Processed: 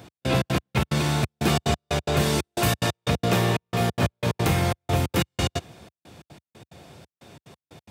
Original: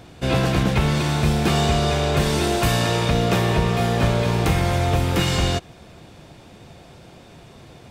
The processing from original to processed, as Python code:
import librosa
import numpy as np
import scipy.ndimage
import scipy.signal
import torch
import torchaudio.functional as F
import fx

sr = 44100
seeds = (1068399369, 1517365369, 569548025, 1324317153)

y = fx.step_gate(x, sr, bpm=181, pattern='x..xx.x..x.xxx', floor_db=-60.0, edge_ms=4.5)
y = scipy.signal.sosfilt(scipy.signal.butter(4, 72.0, 'highpass', fs=sr, output='sos'), y)
y = fx.high_shelf(y, sr, hz=11000.0, db=8.0)
y = y * librosa.db_to_amplitude(-2.0)